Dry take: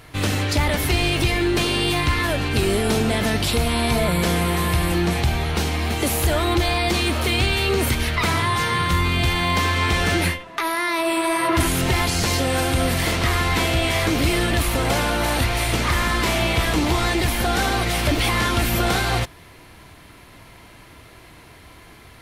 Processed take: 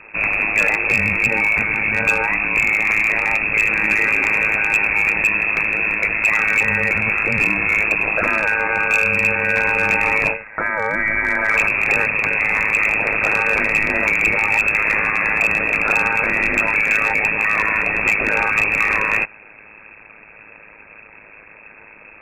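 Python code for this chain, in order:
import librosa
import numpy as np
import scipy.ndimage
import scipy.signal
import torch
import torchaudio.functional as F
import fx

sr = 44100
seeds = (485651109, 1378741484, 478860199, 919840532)

y = x * np.sin(2.0 * np.pi * 53.0 * np.arange(len(x)) / sr)
y = fx.freq_invert(y, sr, carrier_hz=2600)
y = np.clip(y, -10.0 ** (-14.0 / 20.0), 10.0 ** (-14.0 / 20.0))
y = F.gain(torch.from_numpy(y), 5.5).numpy()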